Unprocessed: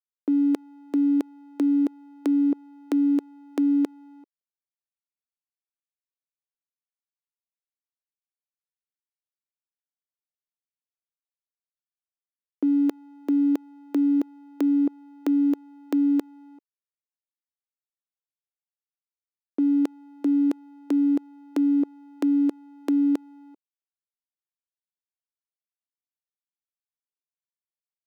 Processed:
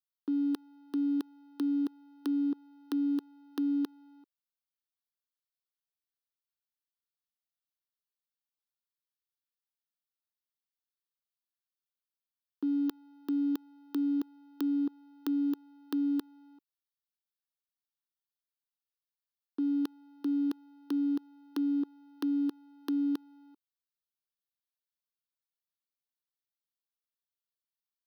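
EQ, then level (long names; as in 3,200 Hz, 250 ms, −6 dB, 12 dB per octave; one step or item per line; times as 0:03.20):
high-shelf EQ 2,100 Hz +8.5 dB
phaser with its sweep stopped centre 2,200 Hz, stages 6
−6.0 dB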